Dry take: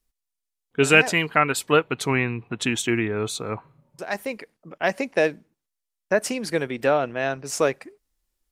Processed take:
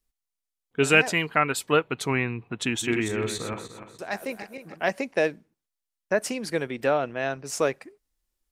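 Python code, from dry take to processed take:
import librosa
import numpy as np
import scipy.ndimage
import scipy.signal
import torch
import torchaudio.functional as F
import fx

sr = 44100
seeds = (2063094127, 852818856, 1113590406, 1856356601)

y = fx.reverse_delay_fb(x, sr, ms=149, feedback_pct=54, wet_db=-7, at=(2.64, 4.89))
y = F.gain(torch.from_numpy(y), -3.0).numpy()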